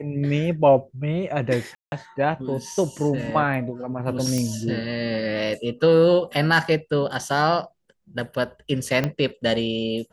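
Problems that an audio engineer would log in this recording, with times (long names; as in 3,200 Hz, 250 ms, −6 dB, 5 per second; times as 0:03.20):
0:01.75–0:01.92: drop-out 171 ms
0:04.38: click −13 dBFS
0:09.04: click −10 dBFS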